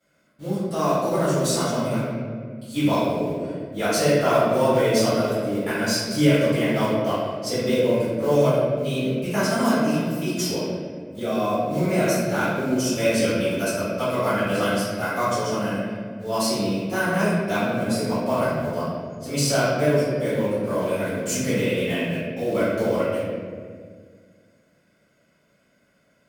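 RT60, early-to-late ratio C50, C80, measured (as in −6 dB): 1.9 s, −3.0 dB, 0.5 dB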